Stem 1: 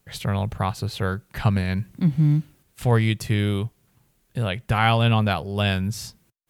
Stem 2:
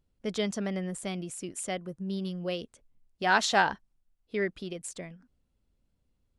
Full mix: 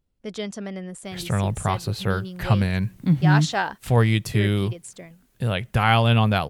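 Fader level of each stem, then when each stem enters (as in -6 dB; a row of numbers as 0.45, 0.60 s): +1.0, -0.5 dB; 1.05, 0.00 s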